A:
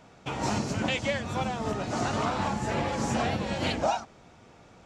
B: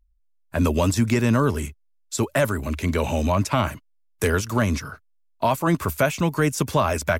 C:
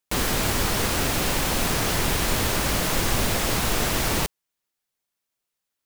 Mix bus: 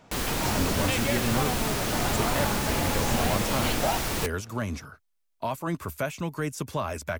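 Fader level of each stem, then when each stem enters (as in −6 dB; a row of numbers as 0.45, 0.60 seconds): −1.0, −9.5, −5.5 decibels; 0.00, 0.00, 0.00 seconds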